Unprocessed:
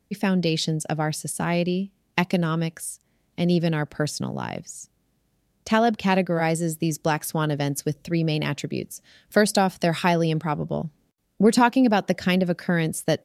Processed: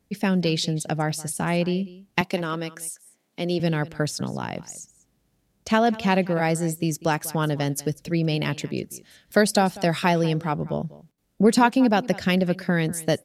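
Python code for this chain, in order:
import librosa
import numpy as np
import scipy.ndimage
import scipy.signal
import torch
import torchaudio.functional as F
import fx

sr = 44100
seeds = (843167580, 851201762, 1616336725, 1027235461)

y = fx.highpass(x, sr, hz=260.0, slope=12, at=(2.21, 3.6))
y = y + 10.0 ** (-19.5 / 20.0) * np.pad(y, (int(194 * sr / 1000.0), 0))[:len(y)]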